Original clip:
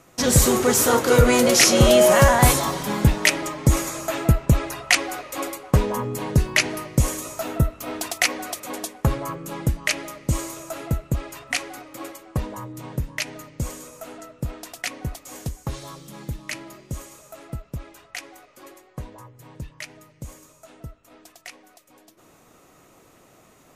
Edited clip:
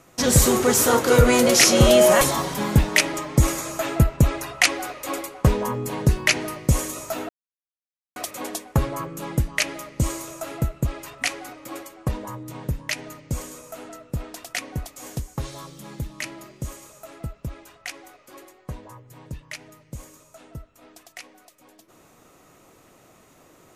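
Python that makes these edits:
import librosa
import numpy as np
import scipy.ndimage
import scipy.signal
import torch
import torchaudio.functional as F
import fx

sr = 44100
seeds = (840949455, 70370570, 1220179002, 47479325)

y = fx.edit(x, sr, fx.cut(start_s=2.21, length_s=0.29),
    fx.silence(start_s=7.58, length_s=0.87), tone=tone)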